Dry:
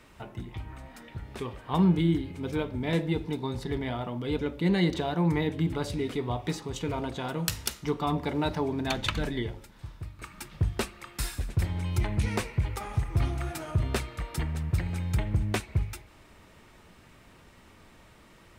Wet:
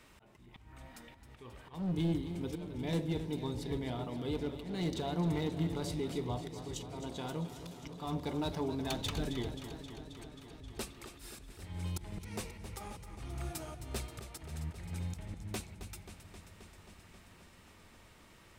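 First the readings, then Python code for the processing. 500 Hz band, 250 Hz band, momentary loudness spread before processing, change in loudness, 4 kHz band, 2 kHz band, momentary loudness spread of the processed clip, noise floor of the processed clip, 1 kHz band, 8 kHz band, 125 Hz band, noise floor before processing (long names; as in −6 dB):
−7.5 dB, −8.0 dB, 15 LU, −9.0 dB, −7.0 dB, −12.0 dB, 21 LU, −60 dBFS, −9.5 dB, −7.0 dB, −10.0 dB, −55 dBFS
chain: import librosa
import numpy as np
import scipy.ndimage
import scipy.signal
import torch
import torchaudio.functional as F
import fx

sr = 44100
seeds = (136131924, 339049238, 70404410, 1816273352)

y = fx.high_shelf(x, sr, hz=2600.0, db=5.0)
y = np.clip(10.0 ** (21.0 / 20.0) * y, -1.0, 1.0) / 10.0 ** (21.0 / 20.0)
y = fx.auto_swell(y, sr, attack_ms=296.0)
y = fx.dynamic_eq(y, sr, hz=1800.0, q=0.89, threshold_db=-50.0, ratio=4.0, max_db=-7)
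y = fx.echo_warbled(y, sr, ms=266, feedback_pct=76, rate_hz=2.8, cents=60, wet_db=-11.5)
y = y * librosa.db_to_amplitude(-6.0)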